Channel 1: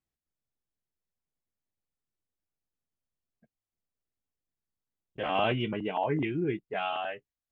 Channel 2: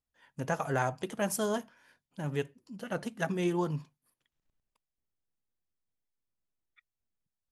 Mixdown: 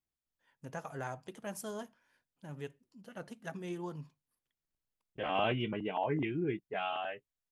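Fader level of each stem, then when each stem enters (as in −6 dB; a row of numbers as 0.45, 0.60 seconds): −4.0, −10.5 decibels; 0.00, 0.25 seconds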